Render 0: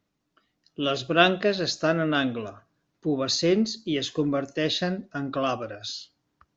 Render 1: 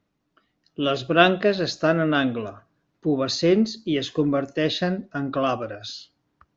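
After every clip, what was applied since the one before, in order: LPF 3100 Hz 6 dB/oct; gain +3.5 dB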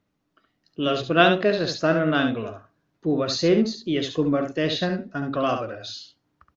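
echo 70 ms -7 dB; gain -1 dB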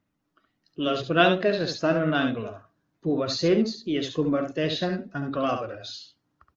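bin magnitudes rounded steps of 15 dB; gain -2 dB

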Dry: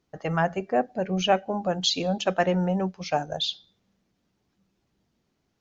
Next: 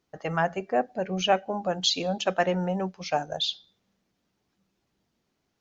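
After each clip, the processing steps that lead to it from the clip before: low shelf 300 Hz -5.5 dB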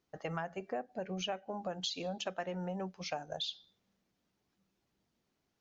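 compressor 6:1, threshold -30 dBFS, peak gain reduction 13 dB; gain -5 dB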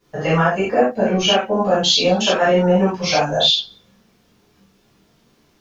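reverb, pre-delay 4 ms, DRR -12.5 dB; gain +7.5 dB

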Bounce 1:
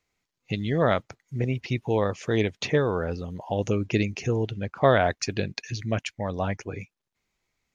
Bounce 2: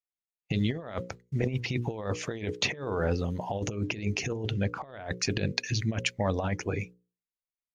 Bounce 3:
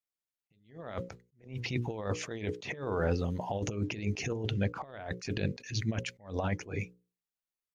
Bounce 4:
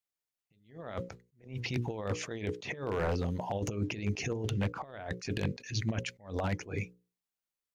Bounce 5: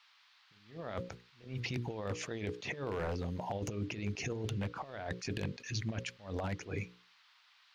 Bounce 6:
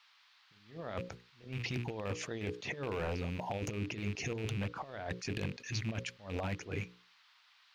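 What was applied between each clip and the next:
expander -42 dBFS; notches 60/120/180/240/300/360/420/480/540 Hz; negative-ratio compressor -29 dBFS, ratio -0.5
attack slew limiter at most 160 dB/s; gain -1.5 dB
one-sided fold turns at -23 dBFS
compressor 2.5:1, threshold -37 dBFS, peak gain reduction 7.5 dB; band noise 930–4600 Hz -67 dBFS; gain +1 dB
rattling part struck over -39 dBFS, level -35 dBFS

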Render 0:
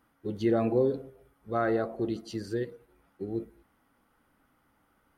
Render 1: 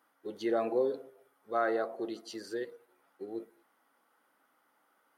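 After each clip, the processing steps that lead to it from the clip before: HPF 460 Hz 12 dB/oct; bell 2500 Hz -3 dB 0.53 oct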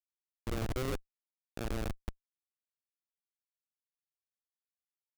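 dynamic EQ 360 Hz, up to +7 dB, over -43 dBFS, Q 0.83; transient shaper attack -3 dB, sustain +12 dB; Schmitt trigger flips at -19 dBFS; gain -3 dB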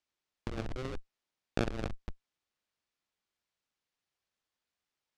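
LPF 5300 Hz 12 dB/oct; negative-ratio compressor -39 dBFS, ratio -0.5; gain +5.5 dB

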